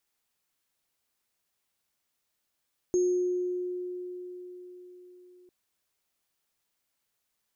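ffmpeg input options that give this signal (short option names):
-f lavfi -i "aevalsrc='0.0891*pow(10,-3*t/4.64)*sin(2*PI*360*t)+0.0133*pow(10,-3*t/0.93)*sin(2*PI*6490*t)':d=2.55:s=44100"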